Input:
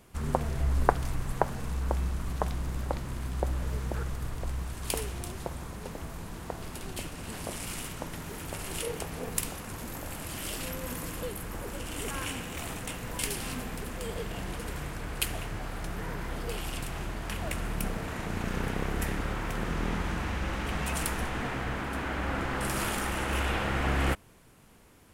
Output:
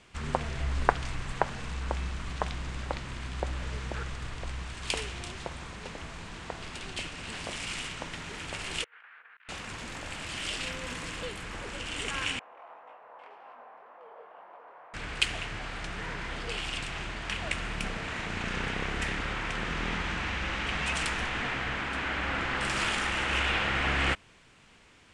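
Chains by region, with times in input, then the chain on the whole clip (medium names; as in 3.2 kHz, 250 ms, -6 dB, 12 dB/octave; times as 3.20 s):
8.84–9.49 s: compressor with a negative ratio -37 dBFS, ratio -0.5 + ladder band-pass 1.7 kHz, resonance 60% + distance through air 500 m
12.39–14.94 s: Butterworth band-pass 790 Hz, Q 1.5 + chorus 1.9 Hz, delay 19.5 ms, depth 7.4 ms
whole clip: steep low-pass 8.8 kHz 36 dB/octave; peaking EQ 2.7 kHz +11.5 dB 2.3 oct; trim -4 dB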